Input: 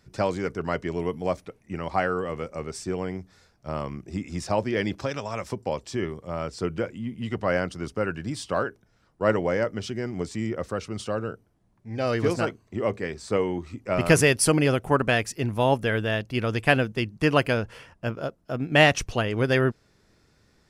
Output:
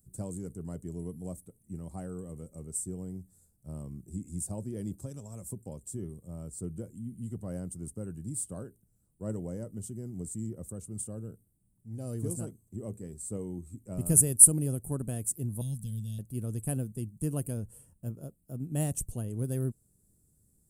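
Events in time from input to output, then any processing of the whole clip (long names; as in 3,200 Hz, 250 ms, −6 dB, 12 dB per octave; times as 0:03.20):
0:15.61–0:16.19: drawn EQ curve 200 Hz 0 dB, 340 Hz −19 dB, 1,600 Hz −26 dB, 3,900 Hz +13 dB, 9,100 Hz −3 dB
whole clip: drawn EQ curve 180 Hz 0 dB, 2,100 Hz −30 dB, 5,400 Hz −17 dB, 8,400 Hz +15 dB; level −5 dB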